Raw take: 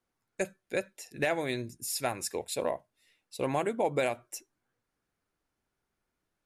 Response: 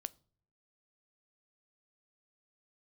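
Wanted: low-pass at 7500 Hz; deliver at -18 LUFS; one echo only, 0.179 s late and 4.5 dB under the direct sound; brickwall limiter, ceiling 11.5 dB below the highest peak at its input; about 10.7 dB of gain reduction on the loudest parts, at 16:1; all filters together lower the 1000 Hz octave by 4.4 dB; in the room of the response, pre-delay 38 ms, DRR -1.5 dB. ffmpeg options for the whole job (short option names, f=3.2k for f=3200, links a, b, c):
-filter_complex "[0:a]lowpass=7.5k,equalizer=f=1k:t=o:g=-6.5,acompressor=threshold=-37dB:ratio=16,alimiter=level_in=13dB:limit=-24dB:level=0:latency=1,volume=-13dB,aecho=1:1:179:0.596,asplit=2[a][b];[1:a]atrim=start_sample=2205,adelay=38[c];[b][c]afir=irnorm=-1:irlink=0,volume=4.5dB[d];[a][d]amix=inputs=2:normalize=0,volume=25dB"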